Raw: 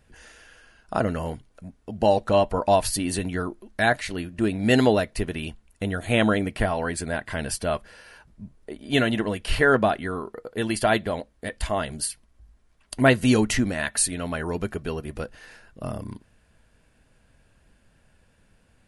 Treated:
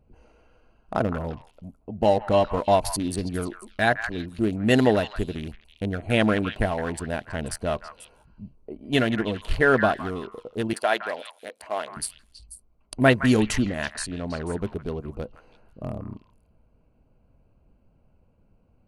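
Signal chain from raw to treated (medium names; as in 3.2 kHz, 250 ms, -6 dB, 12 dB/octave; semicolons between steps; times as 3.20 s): local Wiener filter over 25 samples; 10.73–11.97 s: high-pass 510 Hz 12 dB/octave; 13.56–14.51 s: distance through air 92 m; repeats whose band climbs or falls 163 ms, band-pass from 1.4 kHz, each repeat 1.4 oct, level -6 dB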